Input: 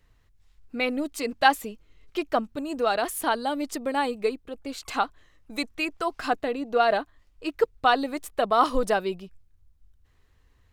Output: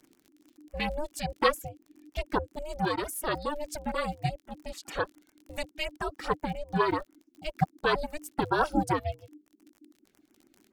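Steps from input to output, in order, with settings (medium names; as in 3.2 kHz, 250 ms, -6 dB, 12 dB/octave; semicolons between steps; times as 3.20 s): reverb removal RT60 0.85 s; crackle 60 per s -40 dBFS; ring modulator 300 Hz; LFO notch sine 7.2 Hz 840–4300 Hz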